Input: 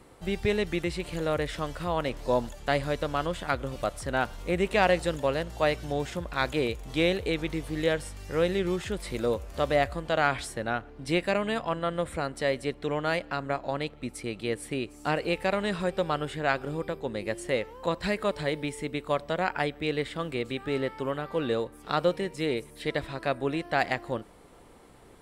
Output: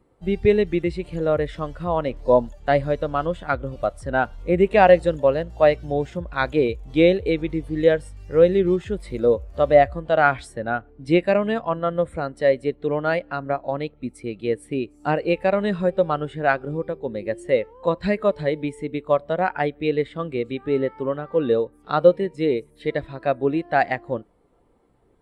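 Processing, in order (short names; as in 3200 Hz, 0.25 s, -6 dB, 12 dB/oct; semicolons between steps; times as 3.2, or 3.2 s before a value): spectral expander 1.5:1; gain +8 dB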